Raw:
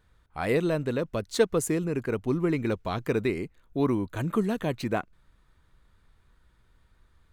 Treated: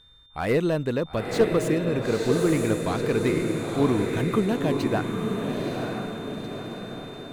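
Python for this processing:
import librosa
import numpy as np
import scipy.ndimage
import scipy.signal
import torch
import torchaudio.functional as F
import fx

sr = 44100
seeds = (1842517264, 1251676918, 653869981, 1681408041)

y = x + 10.0 ** (-56.0 / 20.0) * np.sin(2.0 * np.pi * 3600.0 * np.arange(len(x)) / sr)
y = fx.echo_diffused(y, sr, ms=943, feedback_pct=52, wet_db=-3.5)
y = fx.slew_limit(y, sr, full_power_hz=86.0)
y = F.gain(torch.from_numpy(y), 2.5).numpy()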